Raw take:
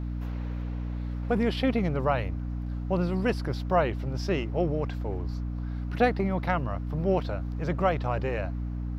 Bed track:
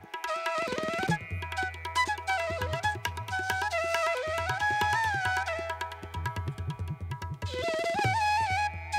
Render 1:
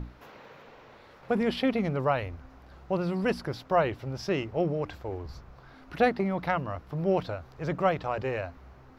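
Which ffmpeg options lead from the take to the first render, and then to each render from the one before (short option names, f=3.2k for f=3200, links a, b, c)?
-af "bandreject=f=60:t=h:w=6,bandreject=f=120:t=h:w=6,bandreject=f=180:t=h:w=6,bandreject=f=240:t=h:w=6,bandreject=f=300:t=h:w=6"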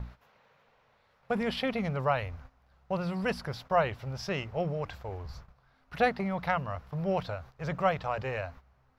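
-af "agate=range=-13dB:threshold=-46dB:ratio=16:detection=peak,equalizer=f=320:t=o:w=0.72:g=-13"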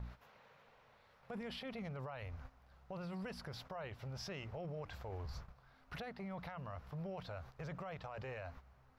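-af "acompressor=threshold=-41dB:ratio=3,alimiter=level_in=14dB:limit=-24dB:level=0:latency=1:release=21,volume=-14dB"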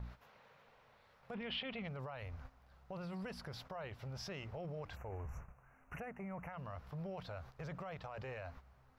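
-filter_complex "[0:a]asettb=1/sr,asplit=3[a][b][c];[a]atrim=end=1.344[d];[b]atrim=start=1.34:end=1.88,asetpts=PTS-STARTPTS,afade=t=in:d=0.004:c=qsin,afade=t=out:st=0.536:d=0.004:c=qsin,lowpass=f=3k:t=q:w=3[e];[c]atrim=start=1.876[f];[d][e]acrossfade=d=0.004:c1=hsin:c2=qsin[g];[g][f]acrossfade=d=0.004:c1=qsin:c2=hsin,asplit=3[h][i][j];[h]afade=t=out:st=4.95:d=0.02[k];[i]asuperstop=centerf=4100:order=12:qfactor=1.3,afade=t=in:st=4.95:d=0.02,afade=t=out:st=6.52:d=0.02[l];[j]afade=t=in:st=6.52:d=0.02[m];[k][l][m]amix=inputs=3:normalize=0"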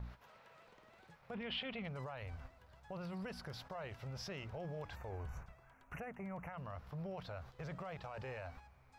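-filter_complex "[1:a]volume=-35dB[a];[0:a][a]amix=inputs=2:normalize=0"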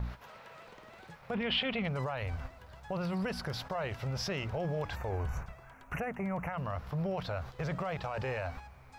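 -af "volume=10.5dB"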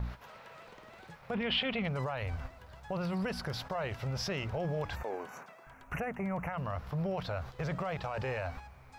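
-filter_complex "[0:a]asettb=1/sr,asplit=3[a][b][c];[a]atrim=end=5.034[d];[b]atrim=start=5.03:end=5.67,asetpts=PTS-STARTPTS,afade=t=in:d=0.004:c=qsin,afade=t=out:st=0.636:d=0.004:c=qsin,highpass=f=230:w=0.5412,highpass=f=230:w=1.3066[e];[c]atrim=start=5.666[f];[d][e]acrossfade=d=0.004:c1=hsin:c2=qsin[g];[g][f]acrossfade=d=0.004:c1=qsin:c2=hsin"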